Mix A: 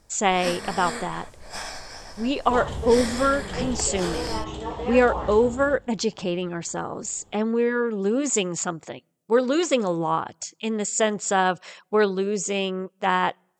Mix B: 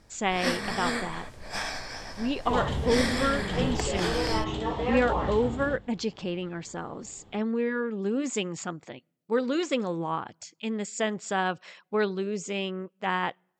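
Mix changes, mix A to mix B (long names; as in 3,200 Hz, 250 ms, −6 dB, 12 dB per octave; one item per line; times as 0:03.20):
speech −8.0 dB
master: add octave-band graphic EQ 125/250/2,000/4,000/8,000 Hz +3/+4/+4/+3/−5 dB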